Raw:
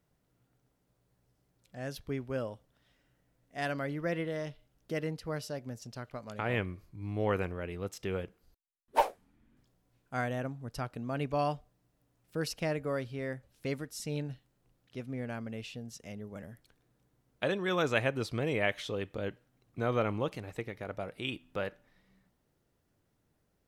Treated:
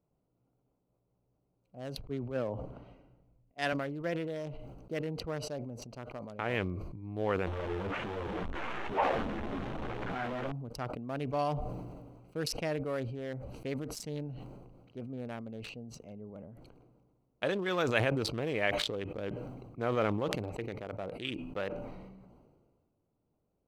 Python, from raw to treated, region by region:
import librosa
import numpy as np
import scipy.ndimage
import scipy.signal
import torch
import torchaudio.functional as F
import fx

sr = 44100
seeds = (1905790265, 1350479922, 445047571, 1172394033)

y = fx.chain(x, sr, fx.lowpass(hz=3800.0, slope=6),
    fx.band_widen(depth_pct=100), at=(2.01, 3.73))
y = fx.chain(y, sr, fx.lowpass(hz=12000.0, slope=12),
    fx.transient(attack_db=2, sustain_db=-5), at=(5.19, 5.59))
y = fx.chain(y, sr, fx.delta_mod(bps=16000, step_db=-24.0),
    fx.lowpass(hz=2500.0, slope=12),
    fx.ensemble(), at=(7.47, 10.52))
y = fx.wiener(y, sr, points=25)
y = fx.low_shelf(y, sr, hz=200.0, db=-6.5)
y = fx.sustainer(y, sr, db_per_s=34.0)